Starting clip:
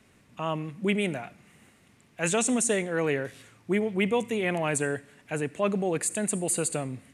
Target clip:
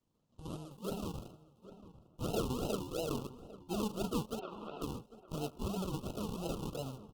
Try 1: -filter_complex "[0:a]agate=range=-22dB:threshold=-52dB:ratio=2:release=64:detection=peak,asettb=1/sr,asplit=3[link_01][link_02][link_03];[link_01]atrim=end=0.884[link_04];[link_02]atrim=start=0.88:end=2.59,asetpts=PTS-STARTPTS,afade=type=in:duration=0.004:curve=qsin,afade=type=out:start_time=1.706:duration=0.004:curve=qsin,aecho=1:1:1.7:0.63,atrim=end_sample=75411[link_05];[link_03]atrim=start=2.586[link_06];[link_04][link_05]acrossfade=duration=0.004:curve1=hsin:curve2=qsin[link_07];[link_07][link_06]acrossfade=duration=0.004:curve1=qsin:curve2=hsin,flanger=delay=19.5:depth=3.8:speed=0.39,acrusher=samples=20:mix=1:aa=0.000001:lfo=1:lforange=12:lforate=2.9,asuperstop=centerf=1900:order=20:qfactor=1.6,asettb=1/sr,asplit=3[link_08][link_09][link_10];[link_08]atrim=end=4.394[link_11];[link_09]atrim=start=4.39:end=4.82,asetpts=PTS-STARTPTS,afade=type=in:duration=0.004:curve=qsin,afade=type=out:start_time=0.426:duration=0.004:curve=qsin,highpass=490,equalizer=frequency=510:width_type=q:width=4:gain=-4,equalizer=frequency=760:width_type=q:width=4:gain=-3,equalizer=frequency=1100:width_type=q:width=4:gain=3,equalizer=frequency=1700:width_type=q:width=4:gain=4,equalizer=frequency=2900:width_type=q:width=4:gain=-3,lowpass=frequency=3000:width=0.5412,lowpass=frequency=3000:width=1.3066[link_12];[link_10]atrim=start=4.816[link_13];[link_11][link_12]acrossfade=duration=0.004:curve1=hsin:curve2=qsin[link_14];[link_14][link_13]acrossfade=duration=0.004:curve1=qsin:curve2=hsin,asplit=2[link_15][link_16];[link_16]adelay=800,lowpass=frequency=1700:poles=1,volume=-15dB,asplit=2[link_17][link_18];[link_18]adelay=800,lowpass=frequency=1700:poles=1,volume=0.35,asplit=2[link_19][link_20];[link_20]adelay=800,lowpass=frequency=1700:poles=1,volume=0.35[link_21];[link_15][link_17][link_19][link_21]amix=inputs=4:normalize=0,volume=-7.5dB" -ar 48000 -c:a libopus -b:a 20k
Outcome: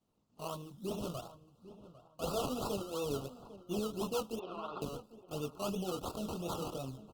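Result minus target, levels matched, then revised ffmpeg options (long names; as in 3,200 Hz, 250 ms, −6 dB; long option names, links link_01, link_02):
sample-and-hold swept by an LFO: distortion −12 dB
-filter_complex "[0:a]agate=range=-22dB:threshold=-52dB:ratio=2:release=64:detection=peak,asettb=1/sr,asplit=3[link_01][link_02][link_03];[link_01]atrim=end=0.884[link_04];[link_02]atrim=start=0.88:end=2.59,asetpts=PTS-STARTPTS,afade=type=in:duration=0.004:curve=qsin,afade=type=out:start_time=1.706:duration=0.004:curve=qsin,aecho=1:1:1.7:0.63,atrim=end_sample=75411[link_05];[link_03]atrim=start=2.586[link_06];[link_04][link_05]acrossfade=duration=0.004:curve1=hsin:curve2=qsin[link_07];[link_07][link_06]acrossfade=duration=0.004:curve1=qsin:curve2=hsin,flanger=delay=19.5:depth=3.8:speed=0.39,acrusher=samples=54:mix=1:aa=0.000001:lfo=1:lforange=32.4:lforate=2.9,asuperstop=centerf=1900:order=20:qfactor=1.6,asettb=1/sr,asplit=3[link_08][link_09][link_10];[link_08]atrim=end=4.394[link_11];[link_09]atrim=start=4.39:end=4.82,asetpts=PTS-STARTPTS,afade=type=in:duration=0.004:curve=qsin,afade=type=out:start_time=0.426:duration=0.004:curve=qsin,highpass=490,equalizer=frequency=510:width_type=q:width=4:gain=-4,equalizer=frequency=760:width_type=q:width=4:gain=-3,equalizer=frequency=1100:width_type=q:width=4:gain=3,equalizer=frequency=1700:width_type=q:width=4:gain=4,equalizer=frequency=2900:width_type=q:width=4:gain=-3,lowpass=frequency=3000:width=0.5412,lowpass=frequency=3000:width=1.3066[link_12];[link_10]atrim=start=4.816[link_13];[link_11][link_12]acrossfade=duration=0.004:curve1=hsin:curve2=qsin[link_14];[link_14][link_13]acrossfade=duration=0.004:curve1=qsin:curve2=hsin,asplit=2[link_15][link_16];[link_16]adelay=800,lowpass=frequency=1700:poles=1,volume=-15dB,asplit=2[link_17][link_18];[link_18]adelay=800,lowpass=frequency=1700:poles=1,volume=0.35,asplit=2[link_19][link_20];[link_20]adelay=800,lowpass=frequency=1700:poles=1,volume=0.35[link_21];[link_15][link_17][link_19][link_21]amix=inputs=4:normalize=0,volume=-7.5dB" -ar 48000 -c:a libopus -b:a 20k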